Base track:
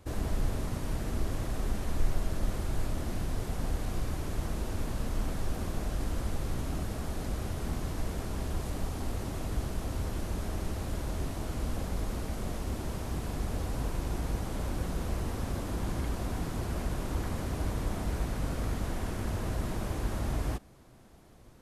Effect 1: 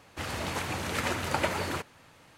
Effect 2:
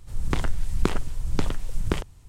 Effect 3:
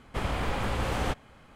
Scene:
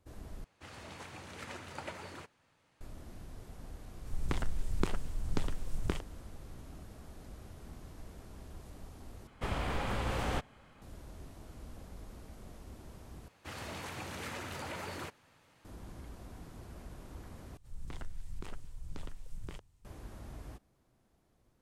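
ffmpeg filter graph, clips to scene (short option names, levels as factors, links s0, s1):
-filter_complex "[1:a]asplit=2[s0][s1];[2:a]asplit=2[s2][s3];[0:a]volume=0.168[s4];[s0]equalizer=f=13000:t=o:w=0.24:g=-12.5[s5];[3:a]acontrast=56[s6];[s1]alimiter=limit=0.0668:level=0:latency=1:release=12[s7];[s3]alimiter=limit=0.224:level=0:latency=1:release=26[s8];[s4]asplit=5[s9][s10][s11][s12][s13];[s9]atrim=end=0.444[s14];[s5]atrim=end=2.37,asetpts=PTS-STARTPTS,volume=0.178[s15];[s10]atrim=start=2.806:end=9.274[s16];[s6]atrim=end=1.55,asetpts=PTS-STARTPTS,volume=0.282[s17];[s11]atrim=start=10.816:end=13.284[s18];[s7]atrim=end=2.37,asetpts=PTS-STARTPTS,volume=0.355[s19];[s12]atrim=start=15.646:end=17.574[s20];[s8]atrim=end=2.28,asetpts=PTS-STARTPTS,volume=0.141[s21];[s13]atrim=start=19.846[s22];[s2]atrim=end=2.28,asetpts=PTS-STARTPTS,volume=0.355,afade=t=in:d=0.004:c=hsin,afade=t=out:st=2.276:d=0.004:c=hsin,adelay=3980[s23];[s14][s15]acrossfade=d=0.004:c1=hsin:c2=hsin[s24];[s24][s16]acrossfade=d=0.004:c1=hsin:c2=hsin[s25];[s25][s17]acrossfade=d=0.004:c1=hsin:c2=hsin[s26];[s26][s18]acrossfade=d=0.004:c1=hsin:c2=hsin[s27];[s27][s19]acrossfade=d=0.004:c1=hsin:c2=hsin[s28];[s28][s20]acrossfade=d=0.004:c1=hsin:c2=hsin[s29];[s29][s21]acrossfade=d=0.004:c1=hsin:c2=hsin[s30];[s30][s22]acrossfade=d=0.004:c1=hsin:c2=hsin[s31];[s31][s23]amix=inputs=2:normalize=0"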